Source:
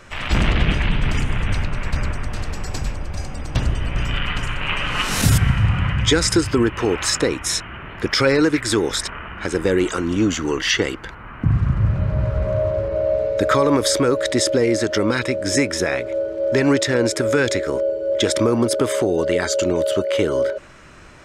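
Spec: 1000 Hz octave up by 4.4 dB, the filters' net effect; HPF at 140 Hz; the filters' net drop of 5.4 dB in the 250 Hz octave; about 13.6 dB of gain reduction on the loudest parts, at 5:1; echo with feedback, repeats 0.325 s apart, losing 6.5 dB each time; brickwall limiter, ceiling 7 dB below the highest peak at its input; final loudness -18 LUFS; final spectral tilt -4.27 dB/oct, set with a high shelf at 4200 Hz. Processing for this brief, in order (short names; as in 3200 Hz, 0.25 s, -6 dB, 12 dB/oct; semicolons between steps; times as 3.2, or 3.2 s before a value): HPF 140 Hz; bell 250 Hz -7.5 dB; bell 1000 Hz +6.5 dB; high shelf 4200 Hz -7 dB; compressor 5:1, threshold -26 dBFS; limiter -20 dBFS; feedback echo 0.325 s, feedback 47%, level -6.5 dB; gain +11.5 dB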